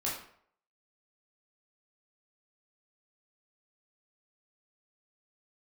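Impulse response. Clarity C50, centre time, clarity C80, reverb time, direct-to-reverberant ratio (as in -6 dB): 4.0 dB, 42 ms, 8.0 dB, 0.60 s, -6.0 dB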